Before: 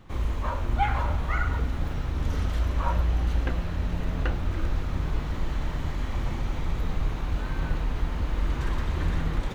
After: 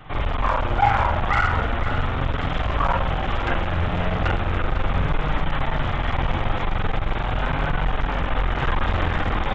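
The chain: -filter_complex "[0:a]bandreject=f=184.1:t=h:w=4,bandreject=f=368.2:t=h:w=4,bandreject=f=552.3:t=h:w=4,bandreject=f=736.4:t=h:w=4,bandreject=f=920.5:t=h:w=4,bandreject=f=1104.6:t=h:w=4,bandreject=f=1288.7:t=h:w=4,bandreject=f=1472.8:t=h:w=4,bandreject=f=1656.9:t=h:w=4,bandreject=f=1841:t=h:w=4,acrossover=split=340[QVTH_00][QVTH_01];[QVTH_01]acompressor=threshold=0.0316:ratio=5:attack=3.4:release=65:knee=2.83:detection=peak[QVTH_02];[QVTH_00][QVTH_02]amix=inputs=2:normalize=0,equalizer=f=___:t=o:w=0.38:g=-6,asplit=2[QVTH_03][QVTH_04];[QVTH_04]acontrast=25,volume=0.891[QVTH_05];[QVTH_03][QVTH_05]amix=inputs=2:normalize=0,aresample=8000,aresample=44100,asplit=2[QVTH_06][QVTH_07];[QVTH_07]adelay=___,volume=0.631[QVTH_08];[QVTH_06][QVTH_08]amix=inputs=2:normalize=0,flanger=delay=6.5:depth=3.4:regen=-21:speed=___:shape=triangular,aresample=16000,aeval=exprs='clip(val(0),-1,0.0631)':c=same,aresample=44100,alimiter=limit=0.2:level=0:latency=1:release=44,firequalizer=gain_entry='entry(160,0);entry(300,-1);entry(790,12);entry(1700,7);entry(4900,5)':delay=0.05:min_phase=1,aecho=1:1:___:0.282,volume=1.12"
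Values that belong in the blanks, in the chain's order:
960, 46, 0.38, 502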